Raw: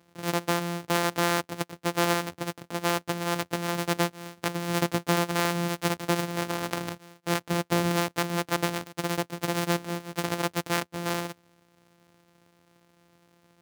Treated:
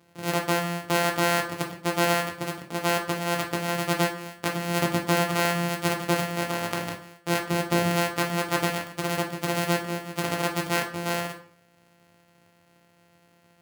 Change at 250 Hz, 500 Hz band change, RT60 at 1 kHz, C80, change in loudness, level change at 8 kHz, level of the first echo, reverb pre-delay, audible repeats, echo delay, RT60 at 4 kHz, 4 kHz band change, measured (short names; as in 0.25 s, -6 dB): +1.0 dB, +2.5 dB, 0.50 s, 13.0 dB, +2.0 dB, +1.5 dB, none, 11 ms, none, none, 0.40 s, +2.0 dB